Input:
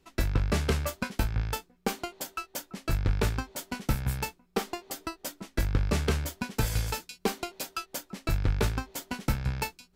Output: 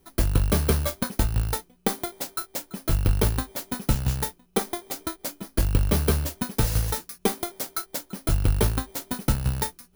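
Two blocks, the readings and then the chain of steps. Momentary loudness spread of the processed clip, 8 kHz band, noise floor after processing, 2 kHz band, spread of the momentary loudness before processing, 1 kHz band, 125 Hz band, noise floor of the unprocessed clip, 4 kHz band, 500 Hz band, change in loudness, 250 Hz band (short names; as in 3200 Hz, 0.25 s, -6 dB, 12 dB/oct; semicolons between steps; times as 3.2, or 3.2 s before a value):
9 LU, +7.0 dB, -61 dBFS, 0.0 dB, 9 LU, +3.0 dB, +5.0 dB, -66 dBFS, +3.5 dB, +4.5 dB, +5.5 dB, +5.0 dB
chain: FFT order left unsorted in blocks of 16 samples; gain +5 dB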